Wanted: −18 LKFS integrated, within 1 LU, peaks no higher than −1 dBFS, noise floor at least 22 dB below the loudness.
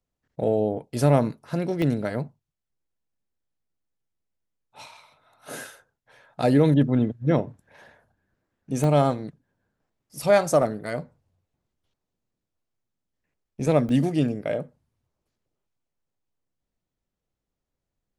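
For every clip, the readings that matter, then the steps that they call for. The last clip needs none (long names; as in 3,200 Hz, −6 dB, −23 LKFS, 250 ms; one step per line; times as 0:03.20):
number of dropouts 4; longest dropout 1.1 ms; integrated loudness −23.5 LKFS; sample peak −7.0 dBFS; target loudness −18.0 LKFS
→ repair the gap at 0:01.82/0:08.84/0:10.62/0:13.89, 1.1 ms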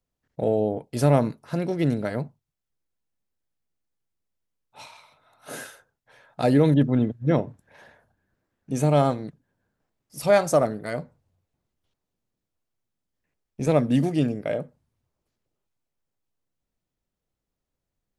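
number of dropouts 0; integrated loudness −23.5 LKFS; sample peak −7.0 dBFS; target loudness −18.0 LKFS
→ level +5.5 dB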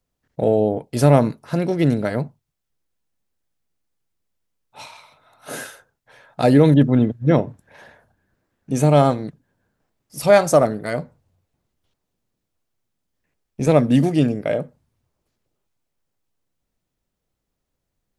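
integrated loudness −18.0 LKFS; sample peak −1.5 dBFS; background noise floor −79 dBFS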